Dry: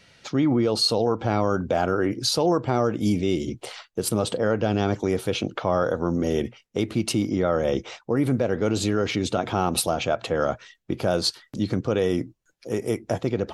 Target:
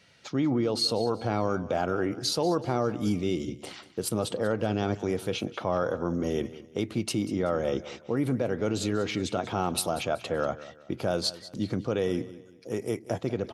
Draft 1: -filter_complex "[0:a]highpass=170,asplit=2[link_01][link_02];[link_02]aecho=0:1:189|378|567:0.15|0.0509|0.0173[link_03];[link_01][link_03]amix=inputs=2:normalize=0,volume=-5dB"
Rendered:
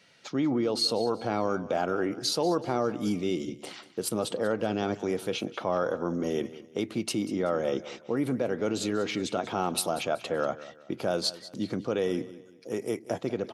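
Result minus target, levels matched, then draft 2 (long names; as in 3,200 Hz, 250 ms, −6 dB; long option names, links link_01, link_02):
125 Hz band −5.0 dB
-filter_complex "[0:a]highpass=64,asplit=2[link_01][link_02];[link_02]aecho=0:1:189|378|567:0.15|0.0509|0.0173[link_03];[link_01][link_03]amix=inputs=2:normalize=0,volume=-5dB"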